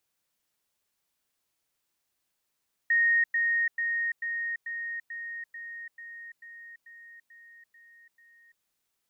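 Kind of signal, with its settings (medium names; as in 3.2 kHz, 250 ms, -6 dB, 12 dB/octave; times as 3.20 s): level ladder 1.86 kHz -20 dBFS, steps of -3 dB, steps 13, 0.34 s 0.10 s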